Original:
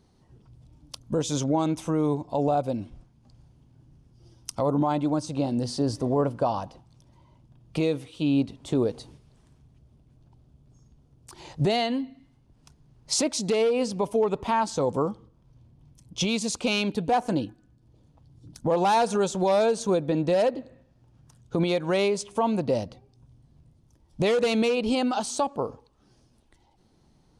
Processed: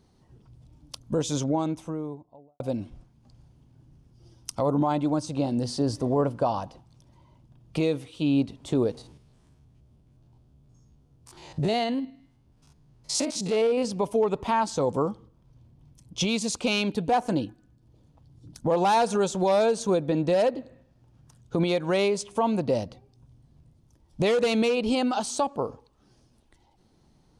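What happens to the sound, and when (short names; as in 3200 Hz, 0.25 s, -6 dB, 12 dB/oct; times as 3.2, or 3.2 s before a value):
1.19–2.6 studio fade out
8.97–13.85 stepped spectrum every 50 ms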